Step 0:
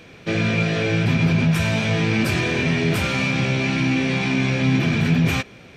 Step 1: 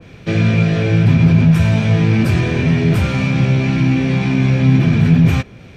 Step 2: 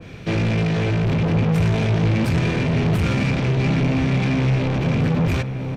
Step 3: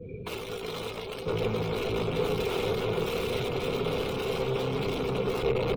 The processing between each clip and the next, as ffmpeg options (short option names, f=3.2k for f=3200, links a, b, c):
-filter_complex "[0:a]lowshelf=f=340:g=4,acrossover=split=160[a][b];[a]acontrast=68[c];[c][b]amix=inputs=2:normalize=0,adynamicequalizer=threshold=0.0141:dfrequency=1900:dqfactor=0.7:tfrequency=1900:tqfactor=0.7:attack=5:release=100:ratio=0.375:range=2:mode=cutabove:tftype=highshelf,volume=1dB"
-filter_complex "[0:a]asoftclip=type=tanh:threshold=-19dB,asplit=2[a][b];[b]adelay=991.3,volume=-7dB,highshelf=f=4k:g=-22.3[c];[a][c]amix=inputs=2:normalize=0,volume=1.5dB"
-af "aeval=exprs='(mod(15*val(0)+1,2)-1)/15':c=same,afftdn=nr=24:nf=-36,superequalizer=7b=3.55:11b=0.316:14b=0.398:15b=0.316:16b=0.501,volume=-3.5dB"